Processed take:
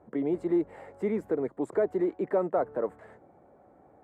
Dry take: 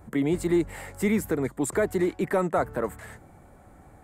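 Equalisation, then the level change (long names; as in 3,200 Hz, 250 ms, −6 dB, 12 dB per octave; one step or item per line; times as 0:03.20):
resonant band-pass 500 Hz, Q 1.2
0.0 dB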